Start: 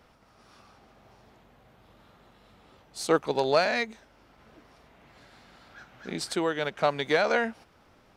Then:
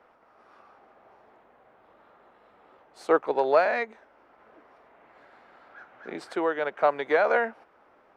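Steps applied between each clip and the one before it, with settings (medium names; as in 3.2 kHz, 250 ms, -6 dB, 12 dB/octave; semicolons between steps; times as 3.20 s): three-band isolator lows -20 dB, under 320 Hz, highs -20 dB, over 2.1 kHz; trim +3.5 dB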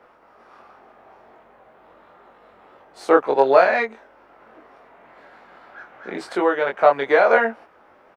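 doubling 22 ms -3 dB; trim +5.5 dB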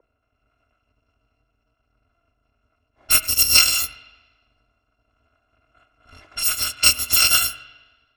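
bit-reversed sample order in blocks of 256 samples; level-controlled noise filter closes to 690 Hz, open at -16 dBFS; spring tank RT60 1.2 s, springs 41/57 ms, chirp 65 ms, DRR 13 dB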